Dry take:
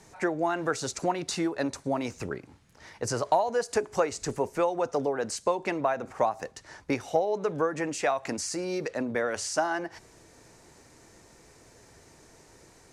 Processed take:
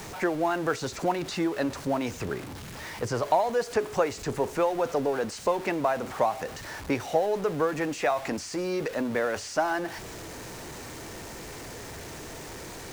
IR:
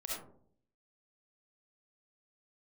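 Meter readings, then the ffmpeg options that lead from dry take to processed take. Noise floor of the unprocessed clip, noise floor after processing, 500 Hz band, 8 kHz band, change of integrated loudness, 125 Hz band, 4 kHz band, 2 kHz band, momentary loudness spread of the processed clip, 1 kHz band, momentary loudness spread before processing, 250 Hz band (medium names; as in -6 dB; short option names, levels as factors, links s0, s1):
-57 dBFS, -41 dBFS, +1.5 dB, -3.0 dB, +1.0 dB, +2.5 dB, +1.0 dB, +1.5 dB, 13 LU, +1.0 dB, 6 LU, +2.0 dB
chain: -filter_complex "[0:a]aeval=exprs='val(0)+0.5*0.0178*sgn(val(0))':c=same,acrossover=split=4200[s0][s1];[s1]acompressor=threshold=0.00708:ratio=4:attack=1:release=60[s2];[s0][s2]amix=inputs=2:normalize=0"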